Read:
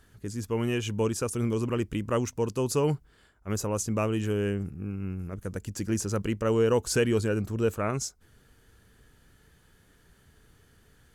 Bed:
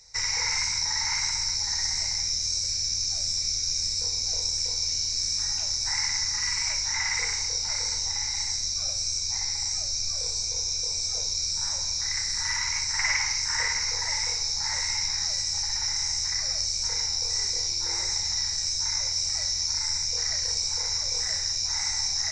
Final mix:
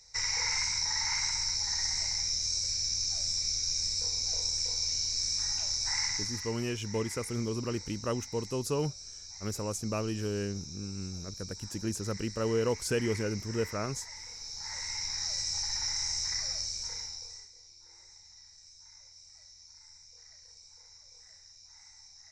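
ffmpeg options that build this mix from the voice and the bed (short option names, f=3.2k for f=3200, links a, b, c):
-filter_complex "[0:a]adelay=5950,volume=-5.5dB[a];[1:a]volume=8.5dB,afade=t=out:st=6.03:d=0.5:silence=0.211349,afade=t=in:st=14.3:d=1.16:silence=0.237137,afade=t=out:st=16.32:d=1.17:silence=0.0794328[b];[a][b]amix=inputs=2:normalize=0"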